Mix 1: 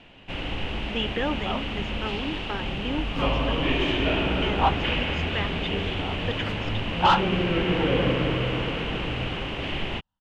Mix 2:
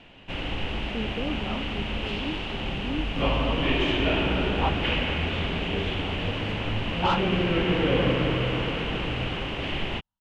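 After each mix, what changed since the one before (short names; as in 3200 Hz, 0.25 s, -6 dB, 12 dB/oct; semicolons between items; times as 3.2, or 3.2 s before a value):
speech: add running mean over 50 samples; second sound -6.5 dB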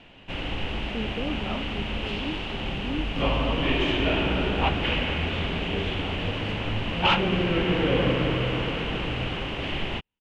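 second sound: remove fixed phaser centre 970 Hz, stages 4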